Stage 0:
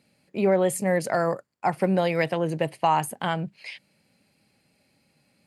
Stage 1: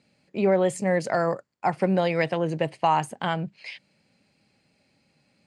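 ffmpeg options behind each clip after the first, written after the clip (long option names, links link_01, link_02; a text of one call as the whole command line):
ffmpeg -i in.wav -af "lowpass=frequency=7900:width=0.5412,lowpass=frequency=7900:width=1.3066" out.wav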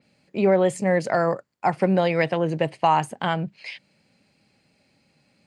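ffmpeg -i in.wav -af "adynamicequalizer=threshold=0.00562:dfrequency=4600:dqfactor=0.7:tfrequency=4600:tqfactor=0.7:attack=5:release=100:ratio=0.375:range=2.5:mode=cutabove:tftype=highshelf,volume=2.5dB" out.wav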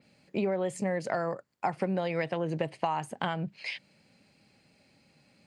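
ffmpeg -i in.wav -af "acompressor=threshold=-27dB:ratio=6" out.wav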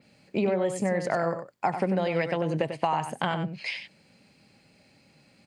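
ffmpeg -i in.wav -af "aecho=1:1:95:0.376,volume=3.5dB" out.wav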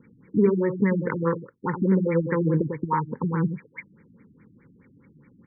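ffmpeg -i in.wav -af "asuperstop=centerf=680:order=8:qfactor=1.7,afftfilt=real='re*lt(b*sr/1024,320*pow(2400/320,0.5+0.5*sin(2*PI*4.8*pts/sr)))':imag='im*lt(b*sr/1024,320*pow(2400/320,0.5+0.5*sin(2*PI*4.8*pts/sr)))':win_size=1024:overlap=0.75,volume=7.5dB" out.wav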